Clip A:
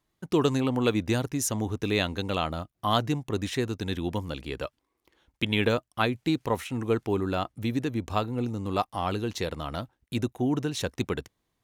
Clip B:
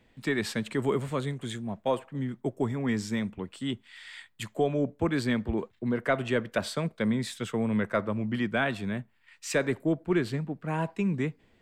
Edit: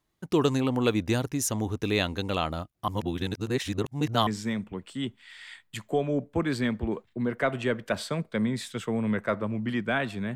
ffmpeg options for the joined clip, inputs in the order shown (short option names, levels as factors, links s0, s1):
-filter_complex "[0:a]apad=whole_dur=10.35,atrim=end=10.35,asplit=2[s0][s1];[s0]atrim=end=2.882[s2];[s1]atrim=start=2.878:end=4.272,asetpts=PTS-STARTPTS,areverse[s3];[1:a]atrim=start=2.928:end=9.01[s4];[s2][s3]acrossfade=d=0.004:c1=hsin:c2=hsin[s5];[s5][s4]acrossfade=d=0.004:c1=hsin:c2=hsin"